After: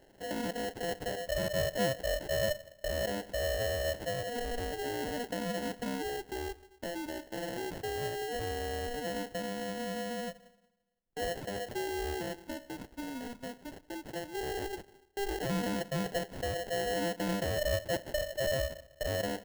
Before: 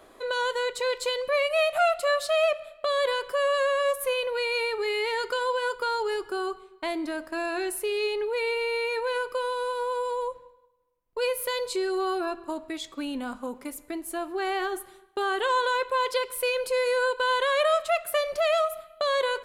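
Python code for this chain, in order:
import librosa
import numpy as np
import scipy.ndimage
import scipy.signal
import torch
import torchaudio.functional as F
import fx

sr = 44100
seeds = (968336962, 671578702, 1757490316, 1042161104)

y = fx.sample_hold(x, sr, seeds[0], rate_hz=1200.0, jitter_pct=0)
y = fx.buffer_glitch(y, sr, at_s=(1.39,), block=2048, repeats=1)
y = y * librosa.db_to_amplitude(-8.0)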